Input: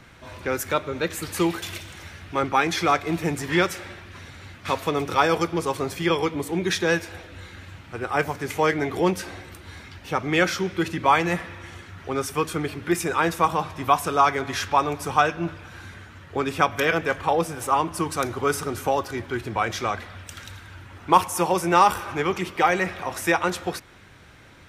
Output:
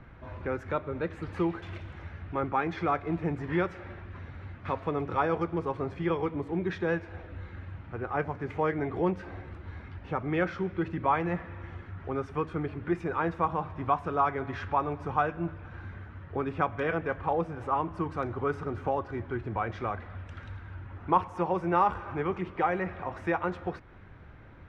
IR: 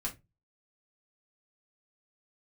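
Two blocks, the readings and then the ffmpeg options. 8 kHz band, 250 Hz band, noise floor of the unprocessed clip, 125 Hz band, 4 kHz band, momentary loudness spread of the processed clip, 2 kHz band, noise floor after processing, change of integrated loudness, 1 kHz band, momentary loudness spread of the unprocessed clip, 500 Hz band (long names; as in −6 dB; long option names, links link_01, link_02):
below −30 dB, −5.5 dB, −47 dBFS, −3.0 dB, −20.0 dB, 15 LU, −10.5 dB, −48 dBFS, −7.5 dB, −7.5 dB, 20 LU, −6.5 dB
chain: -filter_complex "[0:a]lowpass=1600,lowshelf=frequency=94:gain=10,asplit=2[link_01][link_02];[link_02]acompressor=threshold=-34dB:ratio=6,volume=-2dB[link_03];[link_01][link_03]amix=inputs=2:normalize=0,volume=-8dB"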